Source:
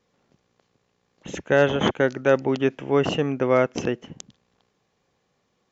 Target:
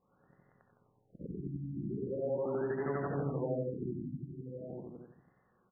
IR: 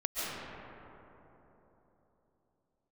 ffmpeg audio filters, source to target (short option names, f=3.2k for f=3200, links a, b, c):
-filter_complex "[0:a]afftfilt=real='re':imag='-im':win_size=8192:overlap=0.75,acrossover=split=330[a][b];[a]acrusher=bits=5:mode=log:mix=0:aa=0.000001[c];[b]tiltshelf=f=800:g=-5.5[d];[c][d]amix=inputs=2:normalize=0,asplit=2[e][f];[f]adelay=874.6,volume=-17dB,highshelf=f=4k:g=-19.7[g];[e][g]amix=inputs=2:normalize=0,acompressor=threshold=-39dB:ratio=3,asplit=2[h][i];[i]aecho=0:1:87.46|160.3|253.6:0.447|0.562|0.316[j];[h][j]amix=inputs=2:normalize=0,adynamicequalizer=threshold=0.00141:dfrequency=130:dqfactor=5:tfrequency=130:tqfactor=5:attack=5:release=100:ratio=0.375:range=1.5:mode=boostabove:tftype=bell,afftfilt=real='re*lt(b*sr/1024,340*pow(2100/340,0.5+0.5*sin(2*PI*0.41*pts/sr)))':imag='im*lt(b*sr/1024,340*pow(2100/340,0.5+0.5*sin(2*PI*0.41*pts/sr)))':win_size=1024:overlap=0.75,volume=2dB"